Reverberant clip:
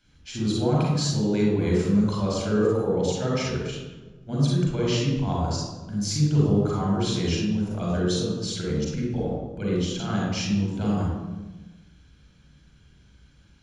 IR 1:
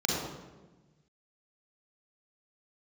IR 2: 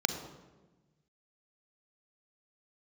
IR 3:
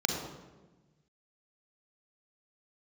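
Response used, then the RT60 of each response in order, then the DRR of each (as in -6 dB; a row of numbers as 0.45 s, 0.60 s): 1; 1.2 s, 1.2 s, 1.2 s; -4.5 dB, 6.5 dB, 1.0 dB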